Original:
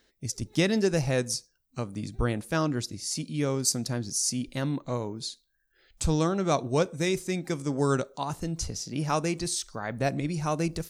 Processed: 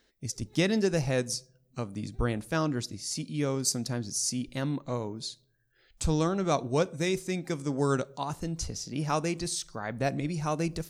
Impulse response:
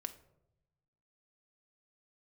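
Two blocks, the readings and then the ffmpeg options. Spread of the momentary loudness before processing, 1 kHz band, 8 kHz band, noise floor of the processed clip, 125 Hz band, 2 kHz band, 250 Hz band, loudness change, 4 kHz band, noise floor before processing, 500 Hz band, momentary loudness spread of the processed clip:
9 LU, −1.5 dB, −2.5 dB, −69 dBFS, −2.0 dB, −1.5 dB, −1.5 dB, −1.5 dB, −2.0 dB, −72 dBFS, −1.5 dB, 9 LU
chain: -filter_complex "[0:a]asplit=2[link_01][link_02];[1:a]atrim=start_sample=2205,lowpass=8600[link_03];[link_02][link_03]afir=irnorm=-1:irlink=0,volume=-12dB[link_04];[link_01][link_04]amix=inputs=2:normalize=0,volume=-3dB"

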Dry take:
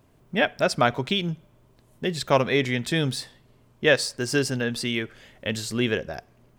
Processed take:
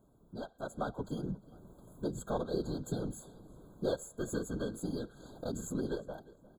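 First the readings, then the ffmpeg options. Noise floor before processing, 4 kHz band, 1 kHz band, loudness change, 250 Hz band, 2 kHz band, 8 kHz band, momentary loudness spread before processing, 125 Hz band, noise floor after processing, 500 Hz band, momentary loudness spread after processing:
−59 dBFS, −24.0 dB, −16.0 dB, −14.0 dB, −10.0 dB, −25.5 dB, −12.5 dB, 13 LU, −12.0 dB, −65 dBFS, −12.5 dB, 14 LU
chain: -filter_complex "[0:a]asuperstop=centerf=4400:order=20:qfactor=1.5,acrossover=split=790|6300[link_01][link_02][link_03];[link_02]aeval=exprs='max(val(0),0)':channel_layout=same[link_04];[link_01][link_04][link_03]amix=inputs=3:normalize=0,acompressor=threshold=-44dB:ratio=2.5,afftfilt=real='hypot(re,im)*cos(2*PI*random(0))':imag='hypot(re,im)*sin(2*PI*random(1))':win_size=512:overlap=0.75,dynaudnorm=framelen=160:gausssize=9:maxgain=10.5dB,equalizer=frequency=83:width_type=o:width=0.28:gain=-14.5,asplit=2[link_05][link_06];[link_06]adelay=355,lowpass=frequency=4200:poles=1,volume=-20.5dB,asplit=2[link_07][link_08];[link_08]adelay=355,lowpass=frequency=4200:poles=1,volume=0.4,asplit=2[link_09][link_10];[link_10]adelay=355,lowpass=frequency=4200:poles=1,volume=0.4[link_11];[link_05][link_07][link_09][link_11]amix=inputs=4:normalize=0,afftfilt=real='re*eq(mod(floor(b*sr/1024/1600),2),0)':imag='im*eq(mod(floor(b*sr/1024/1600),2),0)':win_size=1024:overlap=0.75"

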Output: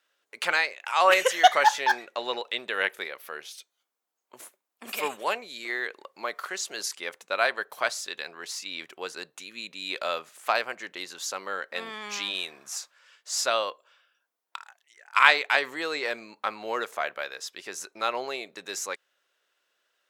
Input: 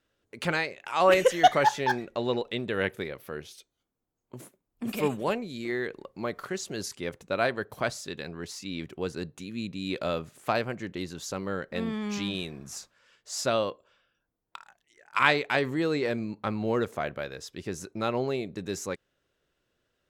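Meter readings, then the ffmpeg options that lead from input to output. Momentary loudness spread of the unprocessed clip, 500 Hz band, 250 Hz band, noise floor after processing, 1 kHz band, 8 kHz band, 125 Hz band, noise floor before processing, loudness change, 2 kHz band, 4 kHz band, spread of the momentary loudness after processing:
15 LU, −3.0 dB, −13.0 dB, −81 dBFS, +3.0 dB, +5.5 dB, below −20 dB, −81 dBFS, +2.0 dB, +5.5 dB, +5.5 dB, 18 LU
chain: -af "highpass=820,volume=5.5dB"

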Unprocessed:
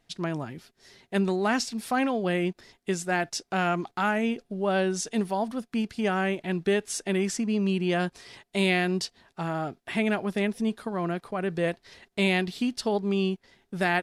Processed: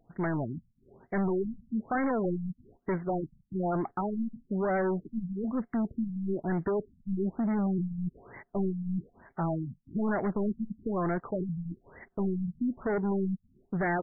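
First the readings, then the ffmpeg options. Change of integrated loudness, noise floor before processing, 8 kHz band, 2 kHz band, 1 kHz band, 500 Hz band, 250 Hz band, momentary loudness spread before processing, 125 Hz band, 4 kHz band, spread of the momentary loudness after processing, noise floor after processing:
−4.5 dB, −73 dBFS, below −40 dB, −10.5 dB, −5.5 dB, −4.5 dB, −2.5 dB, 8 LU, −1.5 dB, below −40 dB, 9 LU, −72 dBFS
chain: -af "volume=30dB,asoftclip=hard,volume=-30dB,afftfilt=real='re*lt(b*sr/1024,210*pow(2300/210,0.5+0.5*sin(2*PI*1.1*pts/sr)))':imag='im*lt(b*sr/1024,210*pow(2300/210,0.5+0.5*sin(2*PI*1.1*pts/sr)))':win_size=1024:overlap=0.75,volume=4dB"

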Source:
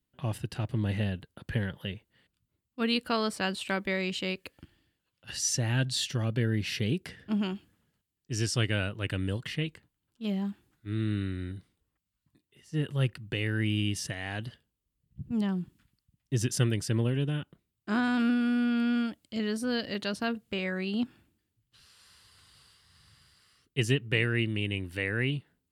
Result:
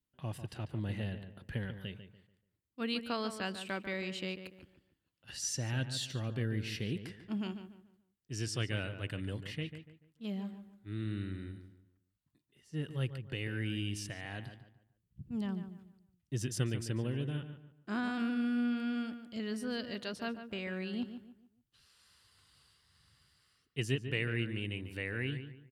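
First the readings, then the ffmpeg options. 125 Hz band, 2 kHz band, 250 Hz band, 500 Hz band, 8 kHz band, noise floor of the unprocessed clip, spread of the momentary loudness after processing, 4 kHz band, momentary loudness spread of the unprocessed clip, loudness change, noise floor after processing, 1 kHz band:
−7.0 dB, −7.0 dB, −7.0 dB, −7.0 dB, −7.5 dB, −84 dBFS, 12 LU, −7.5 dB, 11 LU, −7.0 dB, −82 dBFS, −7.0 dB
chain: -filter_complex "[0:a]asplit=2[link_01][link_02];[link_02]adelay=145,lowpass=frequency=2400:poles=1,volume=-9.5dB,asplit=2[link_03][link_04];[link_04]adelay=145,lowpass=frequency=2400:poles=1,volume=0.34,asplit=2[link_05][link_06];[link_06]adelay=145,lowpass=frequency=2400:poles=1,volume=0.34,asplit=2[link_07][link_08];[link_08]adelay=145,lowpass=frequency=2400:poles=1,volume=0.34[link_09];[link_01][link_03][link_05][link_07][link_09]amix=inputs=5:normalize=0,volume=-7.5dB"

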